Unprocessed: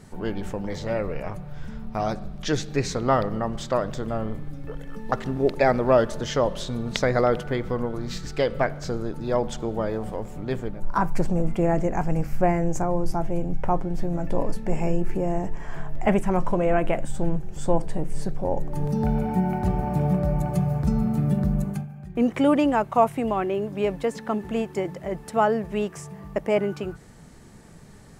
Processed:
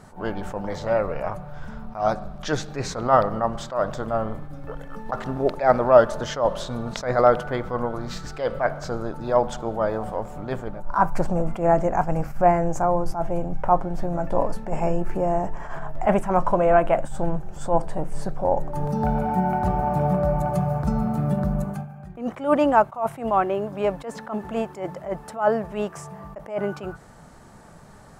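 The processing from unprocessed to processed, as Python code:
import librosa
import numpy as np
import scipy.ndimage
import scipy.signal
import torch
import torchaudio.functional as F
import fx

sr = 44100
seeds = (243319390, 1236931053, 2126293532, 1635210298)

y = fx.band_shelf(x, sr, hz=920.0, db=8.5, octaves=1.7)
y = fx.attack_slew(y, sr, db_per_s=160.0)
y = F.gain(torch.from_numpy(y), -1.0).numpy()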